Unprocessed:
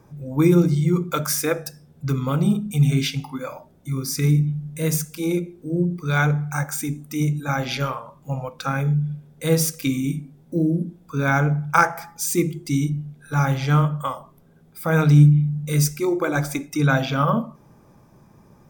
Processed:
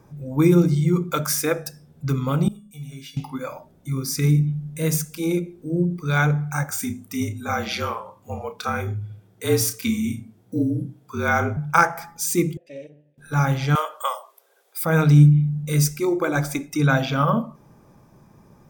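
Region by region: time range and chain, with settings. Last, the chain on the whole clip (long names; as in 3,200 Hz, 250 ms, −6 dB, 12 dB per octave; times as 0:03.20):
0:02.48–0:03.17: high-shelf EQ 8,800 Hz +5.5 dB + tuned comb filter 570 Hz, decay 0.39 s, mix 90%
0:06.70–0:11.57: frequency shifter −43 Hz + high-pass filter 150 Hz + double-tracking delay 32 ms −9.5 dB
0:12.57–0:13.18: lower of the sound and its delayed copy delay 0.81 ms + formant filter e + parametric band 1,400 Hz −12 dB 0.25 octaves
0:13.75–0:14.85: Butterworth high-pass 450 Hz + high-shelf EQ 2,400 Hz +9.5 dB
whole clip: no processing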